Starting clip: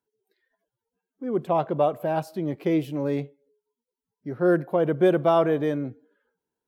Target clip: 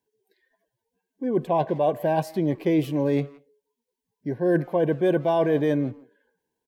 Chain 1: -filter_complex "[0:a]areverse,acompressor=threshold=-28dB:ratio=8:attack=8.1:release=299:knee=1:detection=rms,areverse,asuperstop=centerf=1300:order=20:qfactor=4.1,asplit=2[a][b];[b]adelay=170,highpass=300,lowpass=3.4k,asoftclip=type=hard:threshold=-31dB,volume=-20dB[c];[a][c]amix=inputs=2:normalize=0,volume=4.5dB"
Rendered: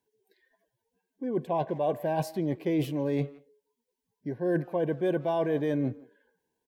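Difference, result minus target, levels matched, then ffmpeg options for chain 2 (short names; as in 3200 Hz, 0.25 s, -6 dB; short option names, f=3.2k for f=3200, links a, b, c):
compressor: peak gain reduction +6 dB
-filter_complex "[0:a]areverse,acompressor=threshold=-21dB:ratio=8:attack=8.1:release=299:knee=1:detection=rms,areverse,asuperstop=centerf=1300:order=20:qfactor=4.1,asplit=2[a][b];[b]adelay=170,highpass=300,lowpass=3.4k,asoftclip=type=hard:threshold=-31dB,volume=-20dB[c];[a][c]amix=inputs=2:normalize=0,volume=4.5dB"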